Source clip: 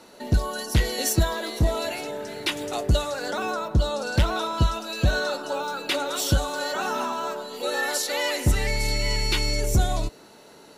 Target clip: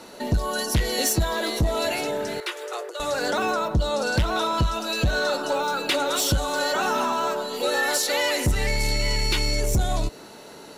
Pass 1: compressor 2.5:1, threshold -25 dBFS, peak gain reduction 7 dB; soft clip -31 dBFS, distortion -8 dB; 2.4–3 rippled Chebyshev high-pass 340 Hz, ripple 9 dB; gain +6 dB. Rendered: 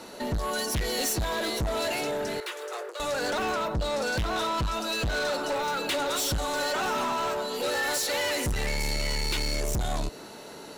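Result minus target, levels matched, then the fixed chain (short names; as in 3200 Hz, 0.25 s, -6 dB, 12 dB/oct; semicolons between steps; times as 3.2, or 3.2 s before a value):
soft clip: distortion +12 dB
compressor 2.5:1, threshold -25 dBFS, peak gain reduction 7 dB; soft clip -20 dBFS, distortion -19 dB; 2.4–3 rippled Chebyshev high-pass 340 Hz, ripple 9 dB; gain +6 dB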